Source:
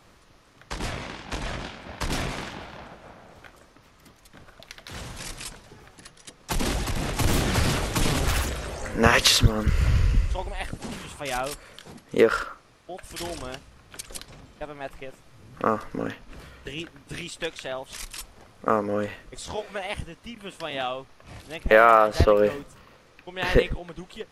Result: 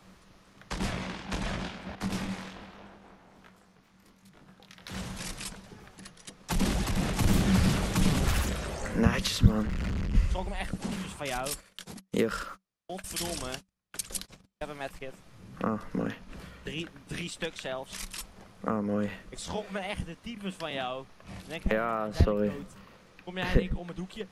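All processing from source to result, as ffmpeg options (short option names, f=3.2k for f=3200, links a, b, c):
-filter_complex "[0:a]asettb=1/sr,asplit=3[a][b][c];[a]atrim=end=1.954[d];[b]atrim=start=1.95:end=4.82,asetpts=PTS-STARTPTS,afade=t=in:d=0.004:c=qsin,afade=t=out:st=2.866:d=0.004:c=qsin,bandreject=f=250:w=6.7,flanger=delay=20:depth=4:speed=1.2,aeval=exprs='val(0)*sin(2*PI*150*n/s)':c=same[e];[c]atrim=start=4.816[f];[d][e]acrossfade=d=0.004:c1=hsin:c2=qsin[g];[g][f]acrossfade=d=0.004:c1=qsin:c2=hsin,asettb=1/sr,asplit=3[h][i][j];[h]atrim=end=9.624[k];[i]atrim=start=9.62:end=10.15,asetpts=PTS-STARTPTS,afade=t=in:d=0.004:c=qsin,afade=t=out:st=0.526:d=0.004:c=qsin,adynamicsmooth=sensitivity=6.5:basefreq=7.4k,asoftclip=type=hard:threshold=-28dB[l];[j]atrim=start=10.146[m];[k][l]acrossfade=d=0.004:c1=hsin:c2=qsin[n];[n][m]acrossfade=d=0.004:c1=qsin:c2=hsin,asettb=1/sr,asplit=3[o][p][q];[o]atrim=end=11.454[r];[p]atrim=start=11.45:end=15.01,asetpts=PTS-STARTPTS,afade=t=in:d=0.004:c=qsin,afade=t=out:st=3.556:d=0.004:c=qsin,highshelf=f=3.6k:g=10,agate=range=-36dB:threshold=-44dB:ratio=16:release=100:detection=peak[s];[q]atrim=start=15.006[t];[r][s]acrossfade=d=0.004:c1=hsin:c2=qsin[u];[u][t]acrossfade=d=0.004:c1=qsin:c2=hsin,equalizer=f=190:t=o:w=0.21:g=13,acrossover=split=260[v][w];[w]acompressor=threshold=-28dB:ratio=4[x];[v][x]amix=inputs=2:normalize=0,volume=-2dB"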